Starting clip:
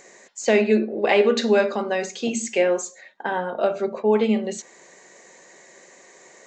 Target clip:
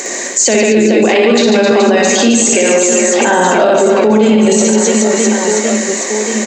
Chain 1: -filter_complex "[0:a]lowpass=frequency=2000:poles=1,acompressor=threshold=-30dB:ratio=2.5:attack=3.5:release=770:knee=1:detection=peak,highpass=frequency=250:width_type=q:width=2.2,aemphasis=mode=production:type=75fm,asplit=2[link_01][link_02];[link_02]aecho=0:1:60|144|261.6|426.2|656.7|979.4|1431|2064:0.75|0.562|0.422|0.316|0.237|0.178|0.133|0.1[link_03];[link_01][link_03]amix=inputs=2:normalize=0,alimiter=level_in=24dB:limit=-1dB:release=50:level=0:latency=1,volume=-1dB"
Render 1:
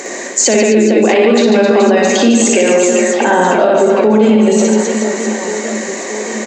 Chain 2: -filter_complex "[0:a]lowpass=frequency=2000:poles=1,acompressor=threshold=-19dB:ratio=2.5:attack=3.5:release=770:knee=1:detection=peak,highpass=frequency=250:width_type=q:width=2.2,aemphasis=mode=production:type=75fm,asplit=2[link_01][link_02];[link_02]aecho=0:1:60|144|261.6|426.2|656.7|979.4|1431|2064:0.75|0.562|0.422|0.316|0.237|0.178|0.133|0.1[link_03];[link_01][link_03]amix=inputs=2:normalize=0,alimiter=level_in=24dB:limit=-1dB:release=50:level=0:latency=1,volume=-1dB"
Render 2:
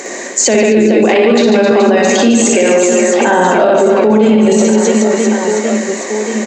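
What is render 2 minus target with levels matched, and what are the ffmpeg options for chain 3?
8,000 Hz band −4.0 dB
-filter_complex "[0:a]lowpass=frequency=6200:poles=1,acompressor=threshold=-19dB:ratio=2.5:attack=3.5:release=770:knee=1:detection=peak,highpass=frequency=250:width_type=q:width=2.2,aemphasis=mode=production:type=75fm,asplit=2[link_01][link_02];[link_02]aecho=0:1:60|144|261.6|426.2|656.7|979.4|1431|2064:0.75|0.562|0.422|0.316|0.237|0.178|0.133|0.1[link_03];[link_01][link_03]amix=inputs=2:normalize=0,alimiter=level_in=24dB:limit=-1dB:release=50:level=0:latency=1,volume=-1dB"

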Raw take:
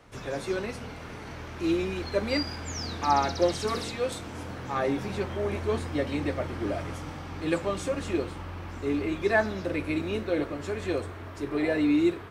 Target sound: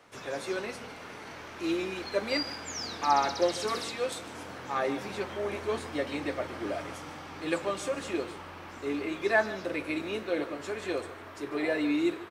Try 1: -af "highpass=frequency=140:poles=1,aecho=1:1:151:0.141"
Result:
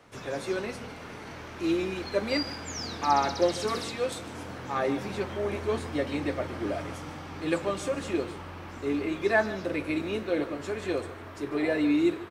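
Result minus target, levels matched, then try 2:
125 Hz band +5.5 dB
-af "highpass=frequency=430:poles=1,aecho=1:1:151:0.141"

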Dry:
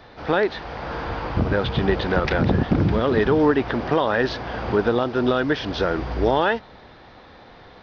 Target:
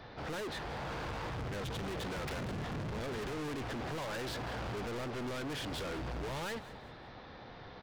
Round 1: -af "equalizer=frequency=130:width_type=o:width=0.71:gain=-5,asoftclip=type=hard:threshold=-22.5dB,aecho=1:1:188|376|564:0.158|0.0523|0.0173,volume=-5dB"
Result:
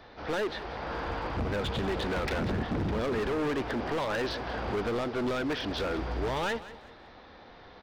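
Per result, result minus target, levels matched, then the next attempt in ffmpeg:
hard clipping: distortion −5 dB; 125 Hz band −2.5 dB
-af "equalizer=frequency=130:width_type=o:width=0.71:gain=-5,asoftclip=type=hard:threshold=-33dB,aecho=1:1:188|376|564:0.158|0.0523|0.0173,volume=-5dB"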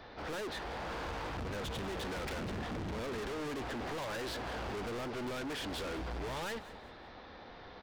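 125 Hz band −3.0 dB
-af "equalizer=frequency=130:width_type=o:width=0.71:gain=5.5,asoftclip=type=hard:threshold=-33dB,aecho=1:1:188|376|564:0.158|0.0523|0.0173,volume=-5dB"

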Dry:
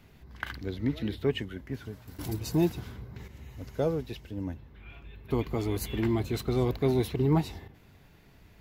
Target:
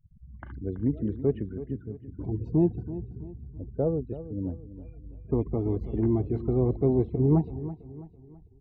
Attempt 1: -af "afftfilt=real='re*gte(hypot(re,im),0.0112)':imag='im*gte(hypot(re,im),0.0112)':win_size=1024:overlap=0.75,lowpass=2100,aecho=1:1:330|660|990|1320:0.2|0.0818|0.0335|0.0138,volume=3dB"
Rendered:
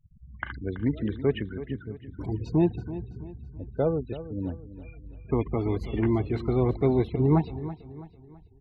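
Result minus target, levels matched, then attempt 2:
2,000 Hz band +16.0 dB
-af "afftfilt=real='re*gte(hypot(re,im),0.0112)':imag='im*gte(hypot(re,im),0.0112)':win_size=1024:overlap=0.75,lowpass=600,aecho=1:1:330|660|990|1320:0.2|0.0818|0.0335|0.0138,volume=3dB"

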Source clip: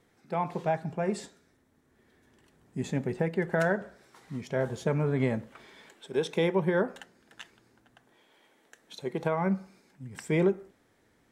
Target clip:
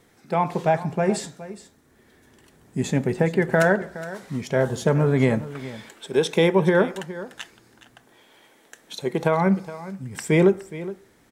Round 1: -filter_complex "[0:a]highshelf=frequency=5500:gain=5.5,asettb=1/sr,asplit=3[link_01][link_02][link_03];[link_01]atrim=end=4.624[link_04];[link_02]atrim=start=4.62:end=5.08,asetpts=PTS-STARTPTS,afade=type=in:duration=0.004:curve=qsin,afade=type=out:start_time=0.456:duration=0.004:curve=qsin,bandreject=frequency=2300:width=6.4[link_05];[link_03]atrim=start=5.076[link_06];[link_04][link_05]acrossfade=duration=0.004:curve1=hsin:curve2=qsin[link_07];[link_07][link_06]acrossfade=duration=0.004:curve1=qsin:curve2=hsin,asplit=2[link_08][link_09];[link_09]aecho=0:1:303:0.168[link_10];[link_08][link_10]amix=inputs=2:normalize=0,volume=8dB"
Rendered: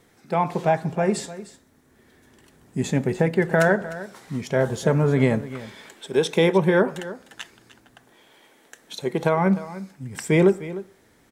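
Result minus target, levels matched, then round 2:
echo 114 ms early
-filter_complex "[0:a]highshelf=frequency=5500:gain=5.5,asettb=1/sr,asplit=3[link_01][link_02][link_03];[link_01]atrim=end=4.624[link_04];[link_02]atrim=start=4.62:end=5.08,asetpts=PTS-STARTPTS,afade=type=in:duration=0.004:curve=qsin,afade=type=out:start_time=0.456:duration=0.004:curve=qsin,bandreject=frequency=2300:width=6.4[link_05];[link_03]atrim=start=5.076[link_06];[link_04][link_05]acrossfade=duration=0.004:curve1=hsin:curve2=qsin[link_07];[link_07][link_06]acrossfade=duration=0.004:curve1=qsin:curve2=hsin,asplit=2[link_08][link_09];[link_09]aecho=0:1:417:0.168[link_10];[link_08][link_10]amix=inputs=2:normalize=0,volume=8dB"

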